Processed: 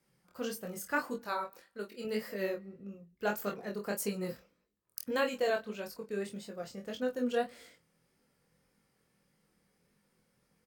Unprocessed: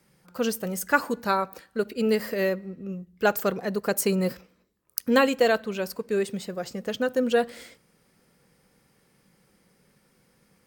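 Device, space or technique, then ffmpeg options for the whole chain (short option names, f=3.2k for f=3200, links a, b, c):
double-tracked vocal: -filter_complex "[0:a]asettb=1/sr,asplit=3[a][b][c];[a]atrim=end=1.214[d];[b]atrim=start=1.21:end=2.05,asetpts=PTS-STARTPTS,afade=t=in:d=0.004:c=qsin,afade=t=out:st=0.836:d=0.004:c=qsin,lowshelf=f=260:g=-10[e];[c]atrim=start=2.046[f];[d][e]acrossfade=d=0.004:c1=hsin:c2=qsin[g];[g][f]acrossfade=d=0.004:c1=qsin:c2=hsin,asplit=2[h][i];[i]adelay=24,volume=-7dB[j];[h][j]amix=inputs=2:normalize=0,flanger=delay=19.5:depth=6.3:speed=1.7,volume=-8dB"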